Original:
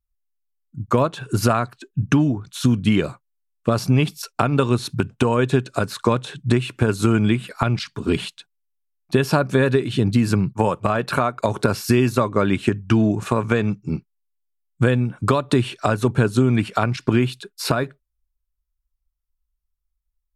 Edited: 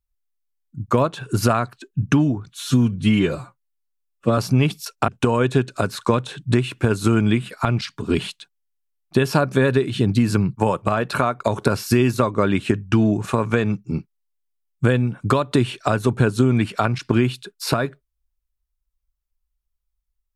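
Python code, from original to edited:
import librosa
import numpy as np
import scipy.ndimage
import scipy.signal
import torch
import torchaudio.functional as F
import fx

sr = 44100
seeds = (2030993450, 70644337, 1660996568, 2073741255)

y = fx.edit(x, sr, fx.stretch_span(start_s=2.49, length_s=1.26, factor=1.5),
    fx.cut(start_s=4.45, length_s=0.61), tone=tone)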